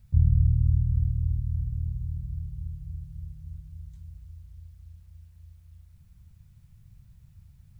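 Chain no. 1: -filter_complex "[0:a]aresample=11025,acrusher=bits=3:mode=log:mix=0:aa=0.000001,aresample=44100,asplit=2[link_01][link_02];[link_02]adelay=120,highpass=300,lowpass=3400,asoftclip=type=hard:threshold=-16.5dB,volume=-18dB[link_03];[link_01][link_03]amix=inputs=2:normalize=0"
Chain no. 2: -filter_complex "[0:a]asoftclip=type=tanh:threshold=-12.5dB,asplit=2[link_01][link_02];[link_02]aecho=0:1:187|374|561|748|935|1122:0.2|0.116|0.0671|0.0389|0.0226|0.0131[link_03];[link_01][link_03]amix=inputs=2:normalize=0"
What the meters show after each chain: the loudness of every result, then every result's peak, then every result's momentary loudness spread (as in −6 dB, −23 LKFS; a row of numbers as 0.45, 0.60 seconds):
−27.5, −28.0 LKFS; −6.5, −12.5 dBFS; 23, 23 LU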